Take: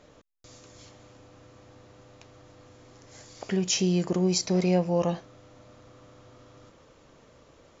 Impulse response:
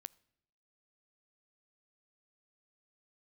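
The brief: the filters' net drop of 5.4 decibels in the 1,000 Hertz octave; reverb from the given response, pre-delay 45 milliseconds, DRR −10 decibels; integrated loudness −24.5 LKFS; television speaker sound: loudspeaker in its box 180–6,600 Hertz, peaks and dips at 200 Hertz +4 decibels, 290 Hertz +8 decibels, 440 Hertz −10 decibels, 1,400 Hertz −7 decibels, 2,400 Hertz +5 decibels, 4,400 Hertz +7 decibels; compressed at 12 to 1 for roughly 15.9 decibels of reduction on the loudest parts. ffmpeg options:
-filter_complex "[0:a]equalizer=frequency=1000:width_type=o:gain=-7,acompressor=threshold=-37dB:ratio=12,asplit=2[link_01][link_02];[1:a]atrim=start_sample=2205,adelay=45[link_03];[link_02][link_03]afir=irnorm=-1:irlink=0,volume=16dB[link_04];[link_01][link_04]amix=inputs=2:normalize=0,highpass=frequency=180:width=0.5412,highpass=frequency=180:width=1.3066,equalizer=frequency=200:width_type=q:width=4:gain=4,equalizer=frequency=290:width_type=q:width=4:gain=8,equalizer=frequency=440:width_type=q:width=4:gain=-10,equalizer=frequency=1400:width_type=q:width=4:gain=-7,equalizer=frequency=2400:width_type=q:width=4:gain=5,equalizer=frequency=4400:width_type=q:width=4:gain=7,lowpass=frequency=6600:width=0.5412,lowpass=frequency=6600:width=1.3066,volume=10dB"

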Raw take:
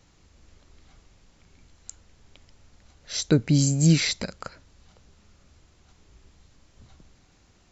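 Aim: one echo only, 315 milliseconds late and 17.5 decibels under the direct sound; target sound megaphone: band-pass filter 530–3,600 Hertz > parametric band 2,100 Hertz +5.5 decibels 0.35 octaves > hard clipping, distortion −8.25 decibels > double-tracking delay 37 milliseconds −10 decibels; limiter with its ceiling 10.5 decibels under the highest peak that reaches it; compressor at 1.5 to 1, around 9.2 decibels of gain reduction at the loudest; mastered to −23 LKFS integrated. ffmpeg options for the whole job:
ffmpeg -i in.wav -filter_complex "[0:a]acompressor=threshold=-40dB:ratio=1.5,alimiter=level_in=2dB:limit=-24dB:level=0:latency=1,volume=-2dB,highpass=530,lowpass=3600,equalizer=frequency=2100:width_type=o:width=0.35:gain=5.5,aecho=1:1:315:0.133,asoftclip=type=hard:threshold=-39.5dB,asplit=2[link_01][link_02];[link_02]adelay=37,volume=-10dB[link_03];[link_01][link_03]amix=inputs=2:normalize=0,volume=23.5dB" out.wav

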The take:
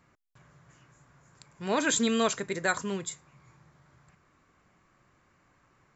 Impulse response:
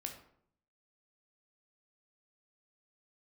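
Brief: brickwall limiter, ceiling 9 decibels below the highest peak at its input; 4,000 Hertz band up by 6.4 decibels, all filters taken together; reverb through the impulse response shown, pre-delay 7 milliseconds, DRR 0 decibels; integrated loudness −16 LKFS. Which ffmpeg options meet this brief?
-filter_complex "[0:a]equalizer=frequency=4000:width_type=o:gain=7.5,alimiter=limit=-20.5dB:level=0:latency=1,asplit=2[link_01][link_02];[1:a]atrim=start_sample=2205,adelay=7[link_03];[link_02][link_03]afir=irnorm=-1:irlink=0,volume=2dB[link_04];[link_01][link_04]amix=inputs=2:normalize=0,volume=13dB"

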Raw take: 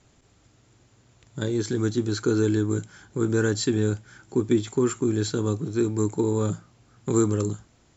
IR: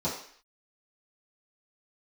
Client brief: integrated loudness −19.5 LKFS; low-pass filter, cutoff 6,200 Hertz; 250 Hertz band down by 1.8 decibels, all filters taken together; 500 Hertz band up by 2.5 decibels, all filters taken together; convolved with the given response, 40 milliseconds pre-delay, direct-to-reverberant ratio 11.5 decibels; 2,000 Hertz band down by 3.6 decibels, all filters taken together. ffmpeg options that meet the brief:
-filter_complex "[0:a]lowpass=6200,equalizer=frequency=250:width_type=o:gain=-6,equalizer=frequency=500:width_type=o:gain=6.5,equalizer=frequency=2000:width_type=o:gain=-6,asplit=2[link_01][link_02];[1:a]atrim=start_sample=2205,adelay=40[link_03];[link_02][link_03]afir=irnorm=-1:irlink=0,volume=-19.5dB[link_04];[link_01][link_04]amix=inputs=2:normalize=0,volume=5.5dB"

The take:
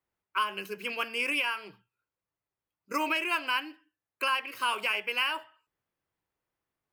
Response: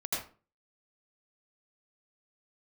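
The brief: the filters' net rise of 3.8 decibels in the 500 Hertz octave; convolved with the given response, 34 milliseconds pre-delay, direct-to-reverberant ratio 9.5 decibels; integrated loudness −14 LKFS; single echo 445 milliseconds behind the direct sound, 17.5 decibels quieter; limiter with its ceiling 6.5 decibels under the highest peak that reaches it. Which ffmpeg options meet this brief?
-filter_complex "[0:a]equalizer=frequency=500:width_type=o:gain=4.5,alimiter=limit=-22.5dB:level=0:latency=1,aecho=1:1:445:0.133,asplit=2[link_01][link_02];[1:a]atrim=start_sample=2205,adelay=34[link_03];[link_02][link_03]afir=irnorm=-1:irlink=0,volume=-14.5dB[link_04];[link_01][link_04]amix=inputs=2:normalize=0,volume=18.5dB"

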